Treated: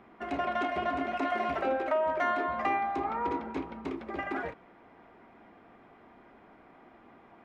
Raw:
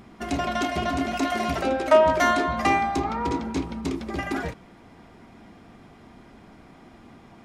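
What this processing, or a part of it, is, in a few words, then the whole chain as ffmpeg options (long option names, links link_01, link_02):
DJ mixer with the lows and highs turned down: -filter_complex "[0:a]acrossover=split=310 2700:gain=0.224 1 0.0794[link_01][link_02][link_03];[link_01][link_02][link_03]amix=inputs=3:normalize=0,alimiter=limit=-16dB:level=0:latency=1:release=466,volume=-3dB"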